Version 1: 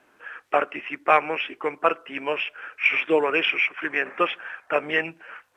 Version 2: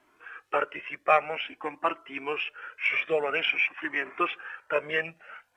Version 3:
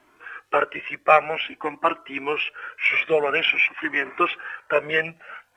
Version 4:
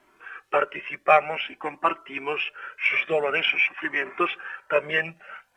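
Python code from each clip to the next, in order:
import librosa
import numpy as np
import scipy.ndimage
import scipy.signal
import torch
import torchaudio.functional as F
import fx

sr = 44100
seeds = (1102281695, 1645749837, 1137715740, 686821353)

y1 = fx.comb_cascade(x, sr, direction='rising', hz=0.5)
y2 = fx.low_shelf(y1, sr, hz=150.0, db=3.0)
y2 = y2 * 10.0 ** (6.0 / 20.0)
y3 = y2 + 0.31 * np.pad(y2, (int(5.2 * sr / 1000.0), 0))[:len(y2)]
y3 = y3 * 10.0 ** (-2.5 / 20.0)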